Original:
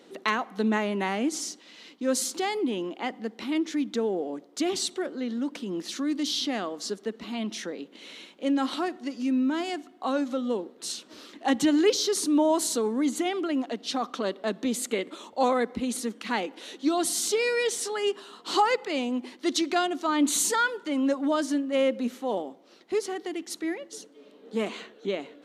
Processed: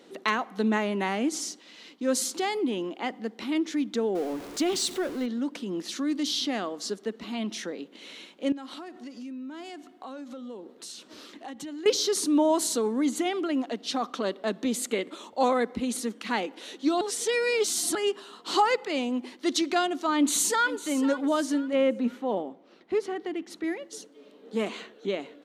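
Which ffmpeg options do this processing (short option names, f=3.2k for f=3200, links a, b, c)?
-filter_complex "[0:a]asettb=1/sr,asplit=3[a][b][c];[a]atrim=end=4.154[d];[b]atrim=start=4.15:end=5.26,asetpts=PTS-STARTPTS,afade=t=in:d=0.004:c=qsin,afade=t=out:st=1.106:d=0.004:c=qsin,aeval=exprs='val(0)+0.5*0.015*sgn(val(0))':c=same[e];[c]atrim=start=5.256[f];[d][e]acrossfade=d=0.004:c1=hsin:c2=qsin[g];[g][f]acrossfade=d=0.004:c1=qsin:c2=hsin,asettb=1/sr,asplit=3[h][i][j];[h]atrim=end=8.524[k];[i]atrim=start=8.52:end=11.86,asetpts=PTS-STARTPTS,afade=t=in:d=0.004:c=qsin,afade=t=out:st=3.336:d=0.004:c=qsin,acompressor=threshold=-39dB:ratio=4:attack=3.2:release=140:knee=1:detection=peak[l];[j]atrim=start=11.856[m];[k][l]acrossfade=d=0.004:c1=hsin:c2=qsin[n];[n][m]acrossfade=d=0.004:c1=qsin:c2=hsin,asplit=2[o][p];[p]afade=t=in:st=20.16:d=0.01,afade=t=out:st=20.8:d=0.01,aecho=0:1:500|1000|1500:0.199526|0.0698342|0.024442[q];[o][q]amix=inputs=2:normalize=0,asettb=1/sr,asplit=3[r][s][t];[r]atrim=end=21.734[u];[s]atrim=start=21.73:end=23.64,asetpts=PTS-STARTPTS,afade=t=in:d=0.004:c=qsin,afade=t=out:st=1.906:d=0.004:c=qsin,bass=f=250:g=4,treble=f=4k:g=-12[v];[t]atrim=start=23.636[w];[u][v]acrossfade=d=0.004:c1=hsin:c2=qsin[x];[x][w]acrossfade=d=0.004:c1=qsin:c2=hsin,asplit=3[y][z][aa];[y]atrim=end=17.012[ab];[z]atrim=start=17.008:end=17.952,asetpts=PTS-STARTPTS,areverse[ac];[aa]atrim=start=17.948[ad];[ab][ac]acrossfade=d=0.004:c1=hsin:c2=hsin[ae];[ae][ad]acrossfade=d=0.004:c1=hsin:c2=hsin"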